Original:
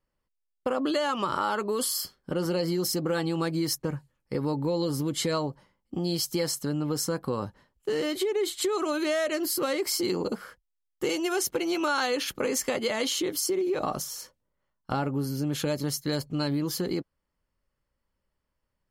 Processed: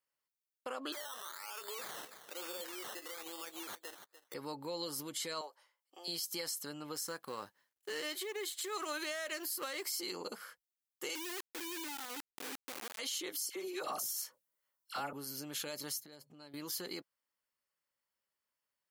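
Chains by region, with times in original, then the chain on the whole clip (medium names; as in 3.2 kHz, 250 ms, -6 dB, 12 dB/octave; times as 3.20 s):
0.92–4.34 s: high-pass 360 Hz 24 dB/octave + decimation with a swept rate 15×, swing 60% 1.1 Hz + delay 293 ms -19 dB
5.41–6.08 s: high-pass 480 Hz 24 dB/octave + short-mantissa float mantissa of 8-bit
6.95–9.85 s: companding laws mixed up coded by A + peaking EQ 1.7 kHz +5 dB 0.22 oct
11.15–12.99 s: cascade formant filter u + companded quantiser 2-bit
13.49–15.13 s: treble shelf 6.3 kHz +8.5 dB + phase dispersion lows, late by 69 ms, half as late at 1.2 kHz
16.03–16.54 s: high-pass 100 Hz + tilt shelf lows +5.5 dB, about 830 Hz + compression 10:1, threshold -36 dBFS
whole clip: high-pass 1.5 kHz 6 dB/octave; treble shelf 10 kHz +7 dB; peak limiter -26 dBFS; trim -3 dB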